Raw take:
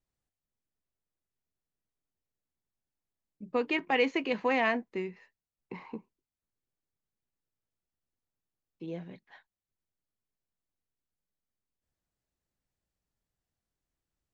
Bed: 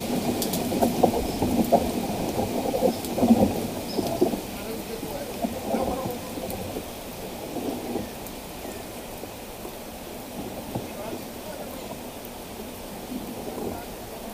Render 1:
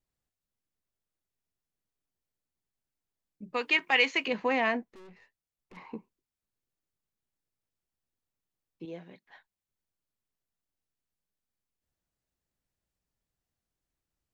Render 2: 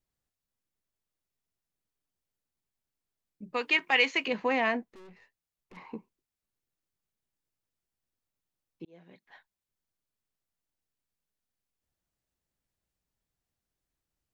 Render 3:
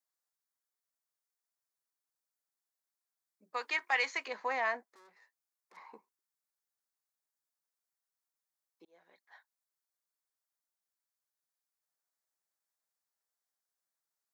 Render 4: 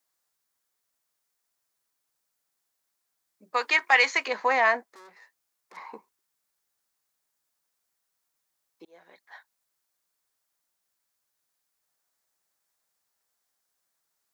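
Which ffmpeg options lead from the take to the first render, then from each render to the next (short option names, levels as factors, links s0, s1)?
-filter_complex "[0:a]asettb=1/sr,asplit=3[s0][s1][s2];[s0]atrim=end=3.544[s3];[s1]atrim=start=3.54:end=4.28,asetpts=PTS-STARTPTS,afade=t=in:d=0.004:c=qsin,afade=t=out:st=0.736:d=0.004:c=qsin,tiltshelf=f=830:g=-9.5[s4];[s2]atrim=start=4.276[s5];[s3][s4]acrossfade=d=0.004:c1=hsin:c2=qsin[s6];[s6][s5]acrossfade=d=0.004:c1=qsin:c2=hsin,asettb=1/sr,asplit=3[s7][s8][s9];[s7]atrim=end=4.834[s10];[s8]atrim=start=4.83:end=5.77,asetpts=PTS-STARTPTS,afade=t=in:d=0.004:c=qsin,afade=t=out:st=0.936:d=0.004:c=qsin,aeval=exprs='(tanh(316*val(0)+0.45)-tanh(0.45))/316':c=same[s11];[s9]atrim=start=5.766[s12];[s10][s11]acrossfade=d=0.004:c1=hsin:c2=qsin[s13];[s13][s12]acrossfade=d=0.004:c1=qsin:c2=hsin,asettb=1/sr,asplit=3[s14][s15][s16];[s14]atrim=end=8.854[s17];[s15]atrim=start=8.85:end=9.26,asetpts=PTS-STARTPTS,afade=t=in:d=0.004:c=qsin,afade=t=out:st=0.406:d=0.004:c=qsin,highpass=f=360:p=1[s18];[s16]atrim=start=9.256[s19];[s17][s18]acrossfade=d=0.004:c1=hsin:c2=qsin[s20];[s20][s19]acrossfade=d=0.004:c1=qsin:c2=hsin"
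-filter_complex "[0:a]asplit=2[s0][s1];[s0]atrim=end=8.85,asetpts=PTS-STARTPTS,afade=t=out:st=8.846:d=0.004:c=hsin[s2];[s1]atrim=start=8.85,asetpts=PTS-STARTPTS,afade=t=in:d=0.41[s3];[s2][s3]concat=n=2:v=0:a=1"
-af "highpass=850,equalizer=f=2800:t=o:w=0.62:g=-14.5"
-af "volume=3.55"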